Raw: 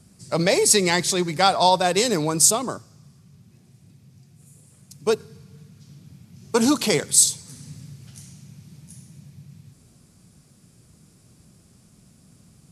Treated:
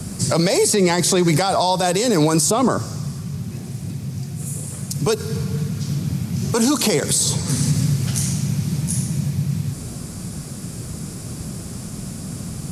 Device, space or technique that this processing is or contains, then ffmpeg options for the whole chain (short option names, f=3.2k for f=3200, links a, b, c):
mastering chain: -filter_complex "[0:a]equalizer=f=3.1k:t=o:w=1.6:g=-3.5,acrossover=split=120|1400|4300[a][b][c][d];[a]acompressor=threshold=-49dB:ratio=4[e];[b]acompressor=threshold=-31dB:ratio=4[f];[c]acompressor=threshold=-44dB:ratio=4[g];[d]acompressor=threshold=-37dB:ratio=4[h];[e][f][g][h]amix=inputs=4:normalize=0,acompressor=threshold=-32dB:ratio=3,alimiter=level_in=31dB:limit=-1dB:release=50:level=0:latency=1,volume=-7.5dB"